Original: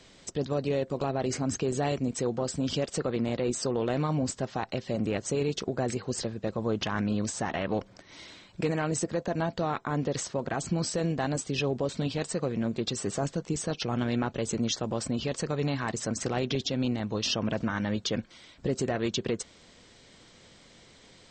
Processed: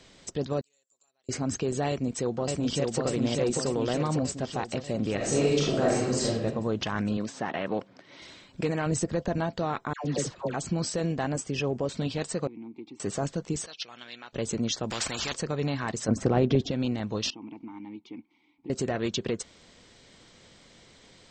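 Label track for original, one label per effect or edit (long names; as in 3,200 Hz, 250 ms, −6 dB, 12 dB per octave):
0.610000	1.290000	resonant band-pass 7,300 Hz, Q 18
1.880000	3.030000	delay throw 590 ms, feedback 65%, level −2 dB
5.160000	6.440000	thrown reverb, RT60 0.83 s, DRR −5.5 dB
7.170000	8.220000	band-pass filter 160–4,200 Hz
8.860000	9.380000	low-shelf EQ 120 Hz +11.5 dB
9.930000	10.540000	all-pass dispersion lows, late by 116 ms, half as late at 970 Hz
11.230000	11.880000	parametric band 3,900 Hz −11.5 dB 0.29 octaves
12.470000	13.000000	formant filter u
13.660000	14.330000	resonant band-pass 3,900 Hz, Q 1.1
14.900000	15.340000	every bin compressed towards the loudest bin 4 to 1
16.080000	16.710000	tilt shelving filter lows +8 dB, about 1,500 Hz
17.300000	18.700000	formant filter u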